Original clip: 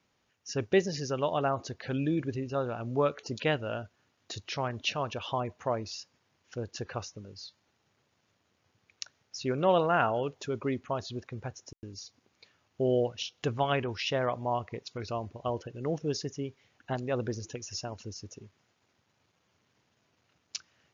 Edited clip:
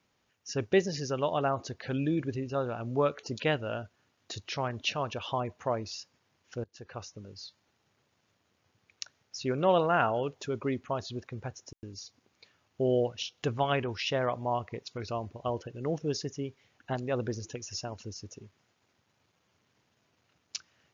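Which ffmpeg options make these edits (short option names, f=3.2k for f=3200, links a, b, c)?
-filter_complex "[0:a]asplit=2[a][b];[a]atrim=end=6.64,asetpts=PTS-STARTPTS,afade=t=out:st=6.636:d=0.004:c=hsin:silence=0.0668344[c];[b]atrim=start=6.64,asetpts=PTS-STARTPTS,afade=t=in:d=0.61:silence=0.0668344[d];[c][d]concat=n=2:v=0:a=1"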